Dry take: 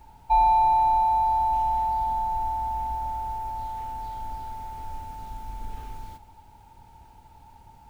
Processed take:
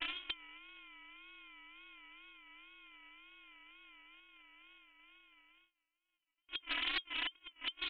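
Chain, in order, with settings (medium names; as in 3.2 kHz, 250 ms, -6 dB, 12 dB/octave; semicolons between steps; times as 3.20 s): loudspeakers at several distances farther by 28 m -10 dB, 88 m -10 dB; reverse; compression 6:1, threshold -37 dBFS, peak gain reduction 20 dB; reverse; small resonant body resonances 600/900/1600 Hz, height 18 dB, ringing for 30 ms; short-mantissa float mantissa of 2-bit; inverted gate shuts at -29 dBFS, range -35 dB; bass shelf 490 Hz -4 dB; gate with hold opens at -58 dBFS; sample-and-hold 42×; Chebyshev high-pass 200 Hz, order 6; frequency inversion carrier 3.3 kHz; wow and flutter 93 cents; loudspeaker Doppler distortion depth 0.24 ms; trim +10.5 dB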